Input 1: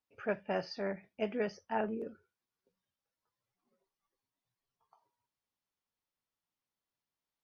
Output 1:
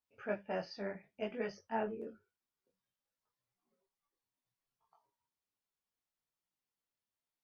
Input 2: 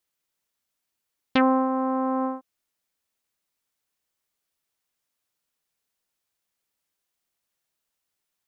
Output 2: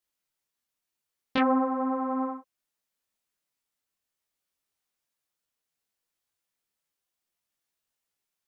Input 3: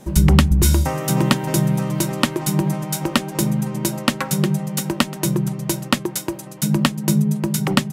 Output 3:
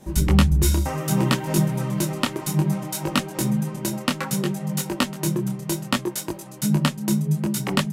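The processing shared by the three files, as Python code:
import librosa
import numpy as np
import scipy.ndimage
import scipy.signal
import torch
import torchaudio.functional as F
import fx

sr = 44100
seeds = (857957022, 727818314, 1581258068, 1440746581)

y = fx.detune_double(x, sr, cents=22)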